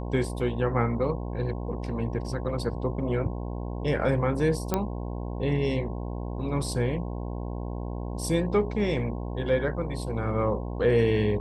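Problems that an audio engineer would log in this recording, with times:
buzz 60 Hz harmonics 18 -33 dBFS
4.74 pop -10 dBFS

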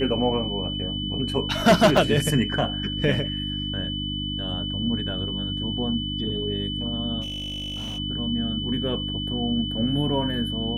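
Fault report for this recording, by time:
hum 50 Hz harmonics 6 -31 dBFS
tone 3000 Hz -30 dBFS
1.97 gap 3.4 ms
7.21–7.99 clipped -28.5 dBFS

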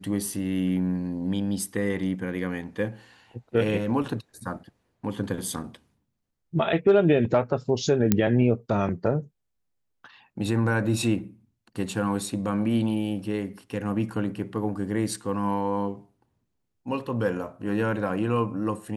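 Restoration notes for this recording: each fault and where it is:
8.12 pop -5 dBFS

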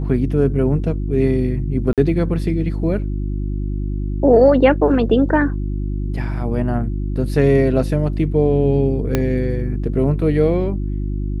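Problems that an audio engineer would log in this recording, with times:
hum 50 Hz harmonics 7 -22 dBFS
1.93–1.98 gap 47 ms
9.15 pop -4 dBFS

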